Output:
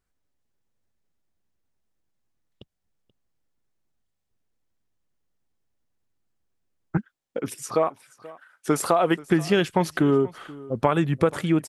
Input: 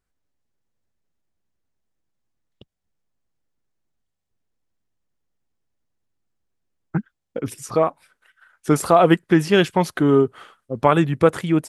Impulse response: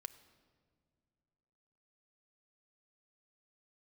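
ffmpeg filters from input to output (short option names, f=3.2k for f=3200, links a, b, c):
-filter_complex "[0:a]asettb=1/sr,asplit=3[a][b][c];[a]atrim=end=6.974[d];[b]atrim=start=6.97:end=9.19,asetpts=PTS-STARTPTS,afade=t=in:d=0.004:c=qsin,afade=t=out:st=2.216:d=0.004:c=qsin,highpass=f=290:p=1[e];[c]atrim=start=9.186[f];[d][e]acrossfade=d=0.004:c1=hsin:c2=qsin[g];[g][f]acrossfade=d=0.004:c1=qsin:c2=hsin,acompressor=threshold=-16dB:ratio=6,aecho=1:1:482:0.0944"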